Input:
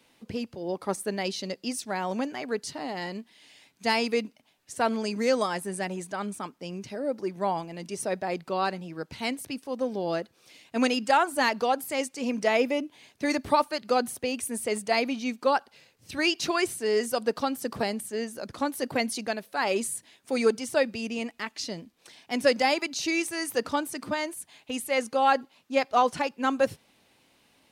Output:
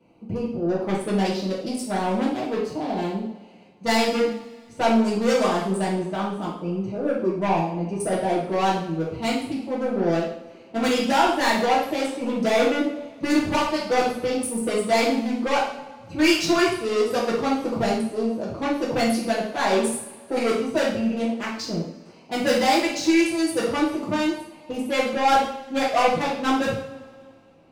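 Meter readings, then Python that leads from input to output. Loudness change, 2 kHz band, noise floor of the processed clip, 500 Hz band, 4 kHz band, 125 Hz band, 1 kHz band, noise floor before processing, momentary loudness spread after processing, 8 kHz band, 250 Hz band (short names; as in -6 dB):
+5.0 dB, +3.5 dB, -48 dBFS, +5.0 dB, +4.0 dB, +10.5 dB, +4.5 dB, -65 dBFS, 10 LU, +2.0 dB, +8.0 dB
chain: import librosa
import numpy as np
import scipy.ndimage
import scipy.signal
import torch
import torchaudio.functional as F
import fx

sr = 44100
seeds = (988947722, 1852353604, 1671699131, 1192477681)

y = fx.wiener(x, sr, points=25)
y = 10.0 ** (-25.5 / 20.0) * np.tanh(y / 10.0 ** (-25.5 / 20.0))
y = fx.rev_double_slope(y, sr, seeds[0], early_s=0.59, late_s=2.3, knee_db=-21, drr_db=-8.0)
y = y * 10.0 ** (2.5 / 20.0)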